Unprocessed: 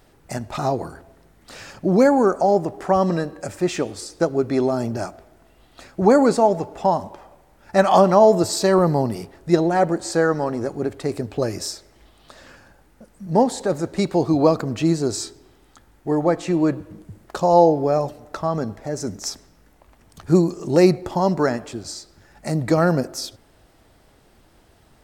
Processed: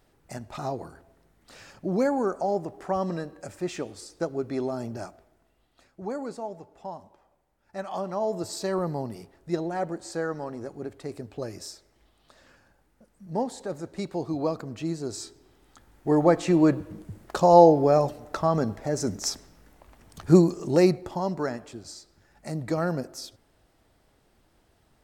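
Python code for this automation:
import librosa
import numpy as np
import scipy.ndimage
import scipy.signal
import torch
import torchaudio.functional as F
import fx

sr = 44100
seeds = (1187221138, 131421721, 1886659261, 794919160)

y = fx.gain(x, sr, db=fx.line((5.03, -9.5), (6.01, -19.0), (7.94, -19.0), (8.53, -11.5), (14.96, -11.5), (16.17, -0.5), (20.34, -0.5), (21.27, -9.5)))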